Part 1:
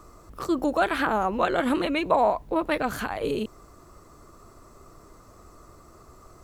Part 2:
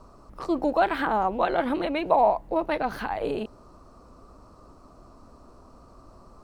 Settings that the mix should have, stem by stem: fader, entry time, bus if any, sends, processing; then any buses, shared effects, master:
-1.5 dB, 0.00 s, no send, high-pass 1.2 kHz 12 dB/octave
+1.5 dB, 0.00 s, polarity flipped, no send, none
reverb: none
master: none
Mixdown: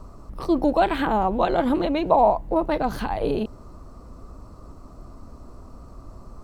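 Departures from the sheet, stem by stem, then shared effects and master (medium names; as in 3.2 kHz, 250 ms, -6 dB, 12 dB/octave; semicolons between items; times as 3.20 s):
stem 1 -1.5 dB -> -9.0 dB; master: extra bass shelf 230 Hz +10.5 dB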